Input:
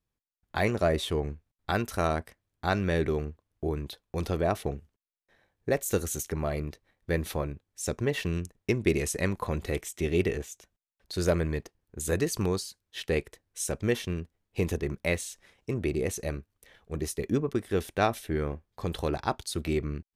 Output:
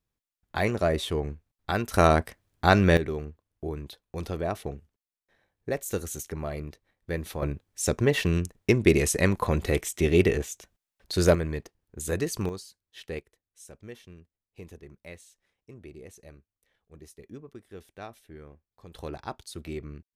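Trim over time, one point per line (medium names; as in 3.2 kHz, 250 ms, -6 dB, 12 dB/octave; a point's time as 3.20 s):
+0.5 dB
from 1.94 s +8 dB
from 2.97 s -3 dB
from 7.42 s +5.5 dB
from 11.35 s -1 dB
from 12.49 s -8 dB
from 13.19 s -16.5 dB
from 18.95 s -7.5 dB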